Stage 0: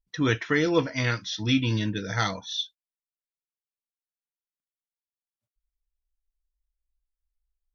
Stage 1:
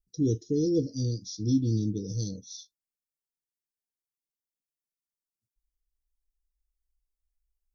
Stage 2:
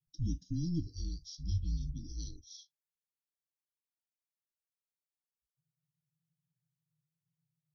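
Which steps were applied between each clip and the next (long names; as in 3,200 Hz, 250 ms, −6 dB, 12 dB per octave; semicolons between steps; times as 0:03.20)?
elliptic band-stop filter 420–4,500 Hz, stop band 40 dB; flat-topped bell 1,700 Hz −11.5 dB 2.7 octaves
frequency shifter −170 Hz; level −8.5 dB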